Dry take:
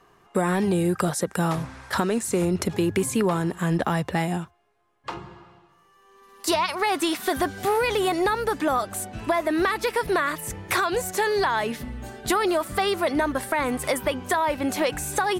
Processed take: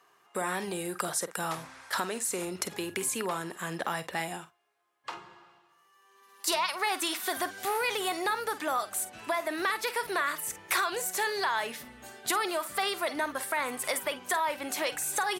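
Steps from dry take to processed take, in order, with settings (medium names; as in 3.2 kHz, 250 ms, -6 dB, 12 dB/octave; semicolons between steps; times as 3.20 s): high-pass 970 Hz 6 dB/octave; treble shelf 8.4 kHz +4 dB; doubling 49 ms -13.5 dB; trim -3 dB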